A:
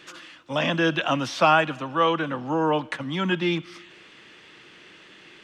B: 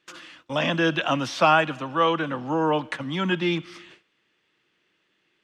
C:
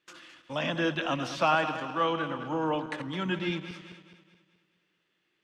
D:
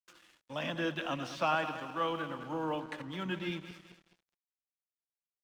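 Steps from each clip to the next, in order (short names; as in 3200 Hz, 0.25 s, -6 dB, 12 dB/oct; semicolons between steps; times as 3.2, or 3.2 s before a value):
gate with hold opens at -36 dBFS
regenerating reverse delay 0.106 s, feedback 67%, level -10 dB; gain -7 dB
crossover distortion -53.5 dBFS; gain -5.5 dB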